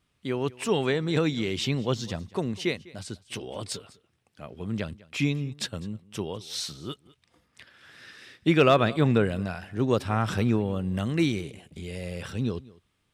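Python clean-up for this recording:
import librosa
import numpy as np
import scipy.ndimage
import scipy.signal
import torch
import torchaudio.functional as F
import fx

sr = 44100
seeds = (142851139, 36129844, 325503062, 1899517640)

y = fx.fix_declip(x, sr, threshold_db=-9.0)
y = fx.fix_echo_inverse(y, sr, delay_ms=201, level_db=-21.5)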